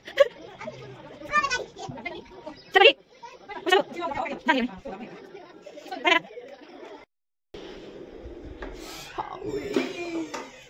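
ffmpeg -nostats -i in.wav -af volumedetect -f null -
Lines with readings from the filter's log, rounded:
mean_volume: -28.5 dB
max_volume: -2.2 dB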